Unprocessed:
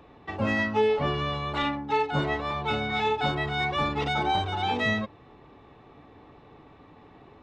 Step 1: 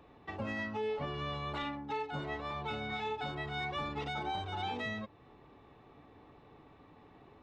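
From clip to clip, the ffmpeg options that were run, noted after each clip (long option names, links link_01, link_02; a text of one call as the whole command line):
ffmpeg -i in.wav -af "alimiter=limit=-22dB:level=0:latency=1:release=324,volume=-6.5dB" out.wav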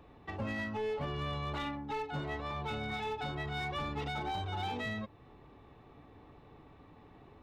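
ffmpeg -i in.wav -af "volume=32dB,asoftclip=hard,volume=-32dB,lowshelf=frequency=120:gain=7.5" out.wav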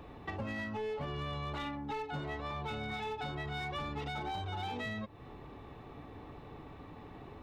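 ffmpeg -i in.wav -af "acompressor=threshold=-46dB:ratio=3,volume=7dB" out.wav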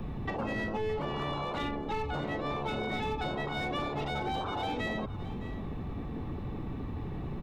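ffmpeg -i in.wav -filter_complex "[0:a]acrossover=split=120|880|3400[link_01][link_02][link_03][link_04];[link_01]aeval=exprs='0.0119*sin(PI/2*10*val(0)/0.0119)':channel_layout=same[link_05];[link_05][link_02][link_03][link_04]amix=inputs=4:normalize=0,aecho=1:1:615:0.168,volume=4dB" out.wav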